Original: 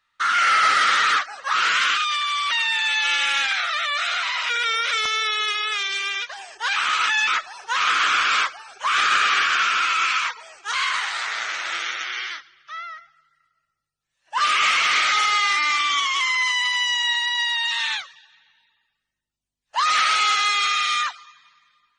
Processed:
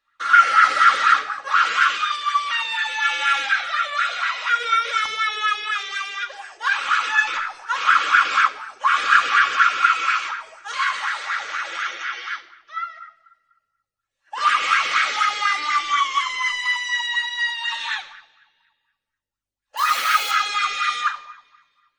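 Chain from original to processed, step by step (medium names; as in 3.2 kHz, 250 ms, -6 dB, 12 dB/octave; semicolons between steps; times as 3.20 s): 19.77–20.31 s: zero-crossing glitches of -19.5 dBFS; peaking EQ 690 Hz -4.5 dB 1.1 oct; simulated room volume 3200 m³, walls furnished, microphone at 2.3 m; sweeping bell 4.1 Hz 440–1600 Hz +16 dB; trim -6.5 dB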